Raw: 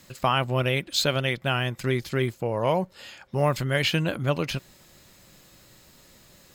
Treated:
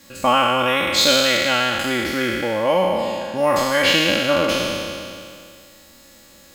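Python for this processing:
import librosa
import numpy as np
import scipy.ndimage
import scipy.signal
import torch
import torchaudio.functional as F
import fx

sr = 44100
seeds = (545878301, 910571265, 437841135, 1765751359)

y = fx.spec_trails(x, sr, decay_s=2.31)
y = fx.low_shelf(y, sr, hz=67.0, db=-8.5)
y = y + 0.76 * np.pad(y, (int(3.6 * sr / 1000.0), 0))[:len(y)]
y = y * librosa.db_to_amplitude(1.5)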